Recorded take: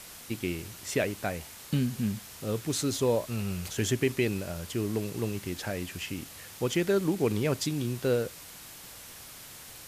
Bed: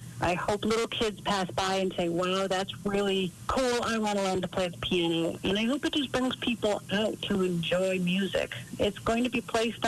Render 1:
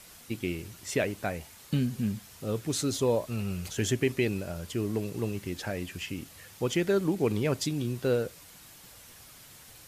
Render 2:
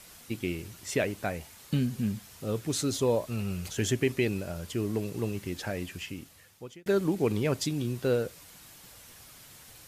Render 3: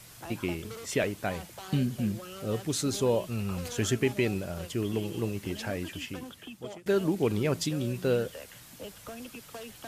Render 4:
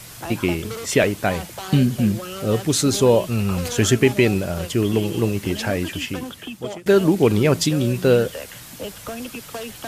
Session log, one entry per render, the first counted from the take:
noise reduction 6 dB, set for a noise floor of -47 dBFS
5.83–6.86 s: fade out
add bed -16 dB
trim +11 dB

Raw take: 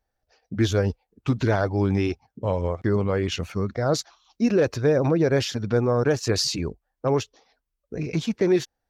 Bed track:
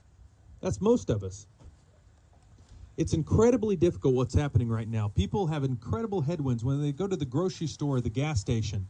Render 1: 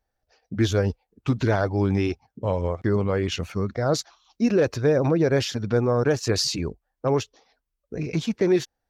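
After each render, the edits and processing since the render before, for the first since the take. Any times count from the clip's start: no audible change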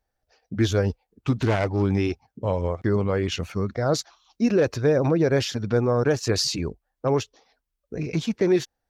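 1.42–1.83 s: self-modulated delay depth 0.18 ms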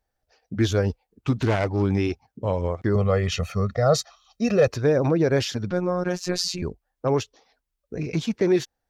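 2.95–4.68 s: comb 1.6 ms, depth 91%; 5.71–6.62 s: robot voice 179 Hz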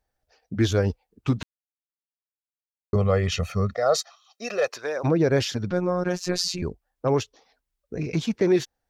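1.43–2.93 s: mute; 3.74–5.03 s: high-pass 390 Hz -> 830 Hz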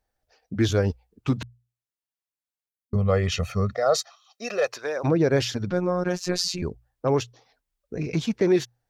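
hum notches 60/120 Hz; 2.69–3.08 s: time-frequency box 240–8700 Hz -8 dB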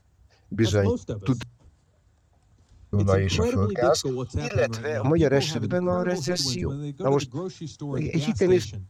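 add bed track -3.5 dB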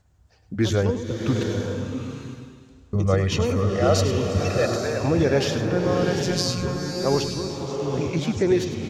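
delay 102 ms -11 dB; swelling reverb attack 840 ms, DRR 3 dB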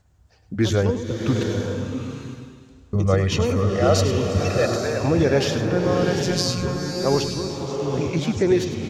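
trim +1.5 dB

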